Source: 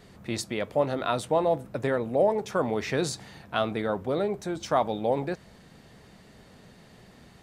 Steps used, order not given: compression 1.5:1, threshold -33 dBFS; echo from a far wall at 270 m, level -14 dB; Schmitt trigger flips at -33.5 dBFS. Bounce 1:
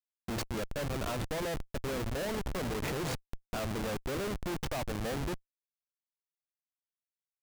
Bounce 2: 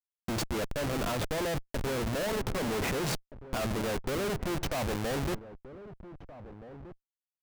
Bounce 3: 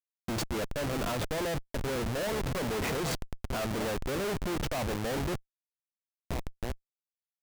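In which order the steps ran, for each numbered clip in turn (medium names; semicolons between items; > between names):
compression > echo from a far wall > Schmitt trigger; Schmitt trigger > compression > echo from a far wall; echo from a far wall > Schmitt trigger > compression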